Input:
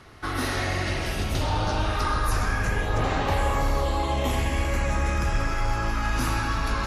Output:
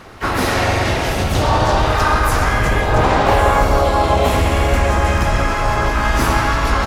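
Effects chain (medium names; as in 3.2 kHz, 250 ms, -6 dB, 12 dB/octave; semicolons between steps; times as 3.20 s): peaking EQ 680 Hz +5.5 dB 1.6 oct; harmony voices -5 st -7 dB, +4 st -5 dB, +12 st -16 dB; trim +6.5 dB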